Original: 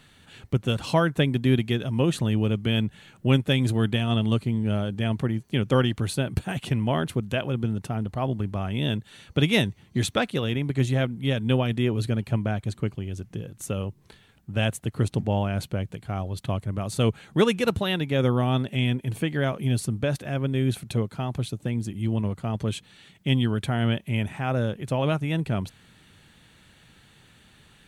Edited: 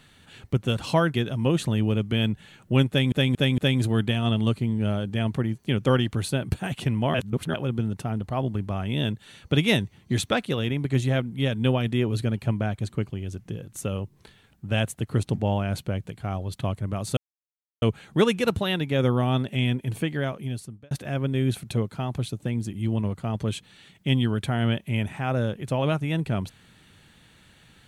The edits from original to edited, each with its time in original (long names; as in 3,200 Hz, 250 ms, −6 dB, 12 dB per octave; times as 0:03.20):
0:01.14–0:01.68: remove
0:03.43: stutter 0.23 s, 4 plays
0:06.99–0:07.39: reverse
0:17.02: splice in silence 0.65 s
0:19.20–0:20.11: fade out